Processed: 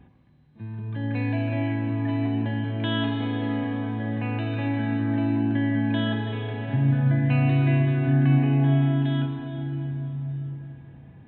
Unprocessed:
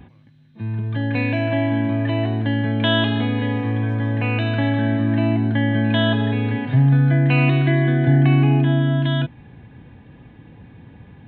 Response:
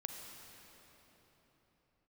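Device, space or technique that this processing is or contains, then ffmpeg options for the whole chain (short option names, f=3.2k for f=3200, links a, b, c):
swimming-pool hall: -filter_complex "[1:a]atrim=start_sample=2205[a];[0:a][a]afir=irnorm=-1:irlink=0,highshelf=f=3.4k:g=-7,volume=-5dB"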